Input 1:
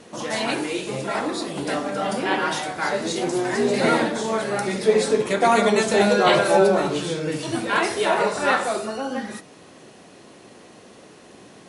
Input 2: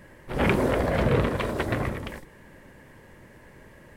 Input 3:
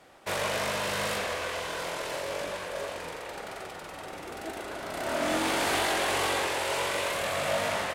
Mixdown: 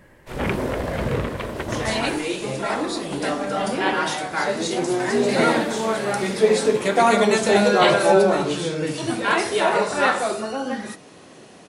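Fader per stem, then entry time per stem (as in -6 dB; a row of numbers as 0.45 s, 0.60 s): +1.0 dB, -1.5 dB, -11.0 dB; 1.55 s, 0.00 s, 0.00 s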